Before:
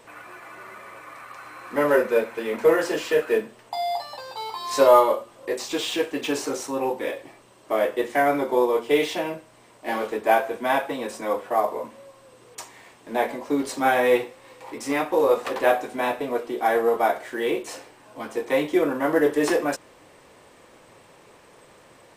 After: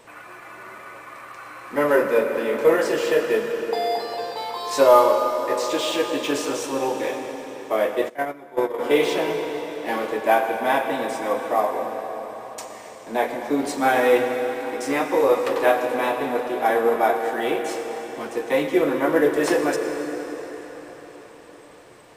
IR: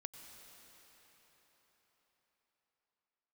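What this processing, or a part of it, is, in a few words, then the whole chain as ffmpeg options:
cathedral: -filter_complex "[1:a]atrim=start_sample=2205[a];[0:a][a]afir=irnorm=-1:irlink=0,asplit=3[b][c][d];[b]afade=t=out:st=8.08:d=0.02[e];[c]agate=range=-20dB:threshold=-22dB:ratio=16:detection=peak,afade=t=in:st=8.08:d=0.02,afade=t=out:st=8.78:d=0.02[f];[d]afade=t=in:st=8.78:d=0.02[g];[e][f][g]amix=inputs=3:normalize=0,volume=6dB"

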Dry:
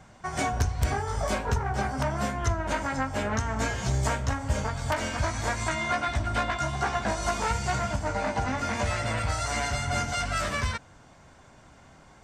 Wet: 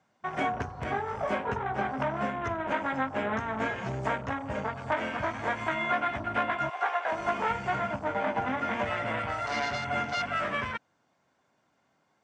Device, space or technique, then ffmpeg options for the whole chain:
over-cleaned archive recording: -filter_complex "[0:a]asettb=1/sr,asplit=3[a][b][c];[a]atrim=end=6.694[d];[b]atrim=start=6.69:end=7.12,asetpts=PTS-STARTPTS,afade=t=in:d=0.004:c=qsin,afade=t=out:st=0.426:d=0.004:c=qsin,highpass=f=490:w=0.5412,highpass=f=490:w=1.3066[e];[c]atrim=start=7.116[f];[d][e]acrossfade=d=0.004:c1=hsin:c2=qsin[g];[g][f]acrossfade=d=0.004:c1=qsin:c2=hsin,highpass=190,lowpass=6.4k,afwtdn=0.0126"

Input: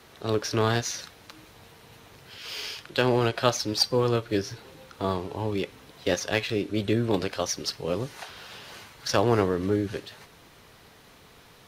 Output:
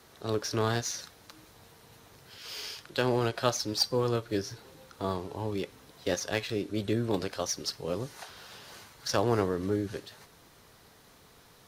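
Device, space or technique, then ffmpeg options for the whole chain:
exciter from parts: -filter_complex "[0:a]asplit=2[a][b];[b]highpass=2.2k,asoftclip=type=tanh:threshold=-22.5dB,highpass=2.4k,volume=-5dB[c];[a][c]amix=inputs=2:normalize=0,volume=-4.5dB"

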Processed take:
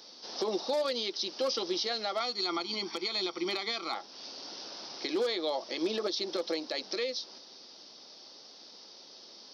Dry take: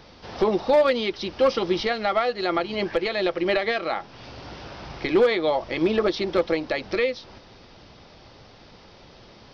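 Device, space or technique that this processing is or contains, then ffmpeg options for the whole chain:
over-bright horn tweeter: -filter_complex "[0:a]highpass=f=240:w=0.5412,highpass=f=240:w=1.3066,asettb=1/sr,asplit=3[a][b][c];[a]atrim=end=2.204[d];[b]atrim=start=2.2:end=3.95,asetpts=PTS-STARTPTS,afade=t=in:d=0.004:c=qsin,afade=t=out:st=1.746:d=0.004:c=qsin,aecho=1:1:0.9:0.8,atrim=end_sample=77175[e];[c]atrim=start=3.946[f];[d][e]acrossfade=d=0.004:c1=hsin:c2=qsin[g];[g][f]acrossfade=d=0.004:c1=qsin:c2=hsin,highshelf=f=3.4k:t=q:w=1.5:g=13,alimiter=limit=-14dB:level=0:latency=1:release=93,volume=-8dB"

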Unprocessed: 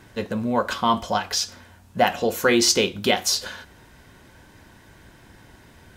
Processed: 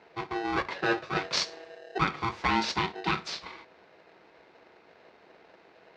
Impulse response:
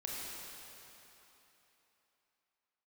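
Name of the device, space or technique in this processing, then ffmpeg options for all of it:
ring modulator pedal into a guitar cabinet: -filter_complex "[0:a]asettb=1/sr,asplit=3[a][b][c];[a]atrim=end=1.164[d];[b]atrim=start=1.16:end=1.98,asetpts=PTS-STARTPTS,afade=t=in:d=0.004:c=qsin,afade=t=out:st=0.816:d=0.004:c=qsin,bass=f=250:g=12,treble=f=4k:g=15[e];[c]atrim=start=1.976[f];[d][e]acrossfade=d=0.004:c1=hsin:c2=qsin[g];[g][f]acrossfade=d=0.004:c1=qsin:c2=hsin,aeval=exprs='val(0)*sgn(sin(2*PI*570*n/s))':c=same,highpass=96,equalizer=f=120:t=q:w=4:g=-6,equalizer=f=250:t=q:w=4:g=-4,equalizer=f=370:t=q:w=4:g=4,equalizer=f=3.2k:t=q:w=4:g=-6,lowpass=f=4.2k:w=0.5412,lowpass=f=4.2k:w=1.3066,volume=-7dB"

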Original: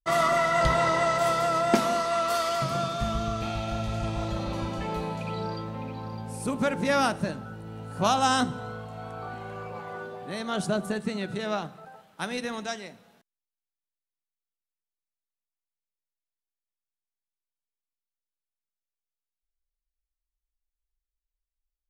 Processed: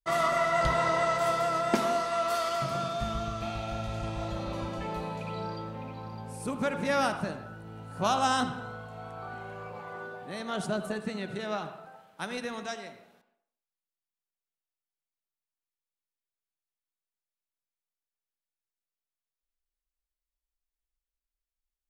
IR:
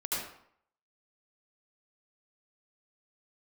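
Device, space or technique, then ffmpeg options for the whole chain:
filtered reverb send: -filter_complex "[0:a]asplit=2[a][b];[b]highpass=310,lowpass=3.6k[c];[1:a]atrim=start_sample=2205[d];[c][d]afir=irnorm=-1:irlink=0,volume=-12.5dB[e];[a][e]amix=inputs=2:normalize=0,volume=-4.5dB"

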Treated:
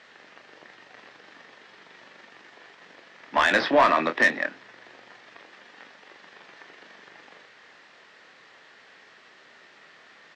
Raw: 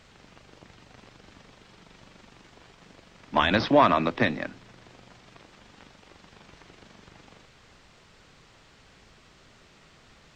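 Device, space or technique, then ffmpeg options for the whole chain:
intercom: -filter_complex "[0:a]highpass=370,lowpass=4.9k,equalizer=f=1.8k:t=o:w=0.33:g=9,asoftclip=type=tanh:threshold=-13.5dB,asplit=2[a][b];[b]adelay=25,volume=-8dB[c];[a][c]amix=inputs=2:normalize=0,volume=2.5dB"

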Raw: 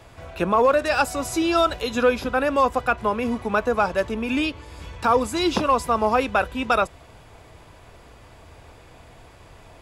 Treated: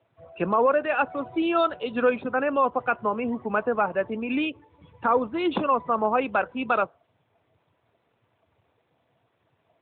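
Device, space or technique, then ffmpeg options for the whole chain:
mobile call with aggressive noise cancelling: -af "highpass=120,afftdn=nr=17:nf=-34,volume=-2.5dB" -ar 8000 -c:a libopencore_amrnb -b:a 12200

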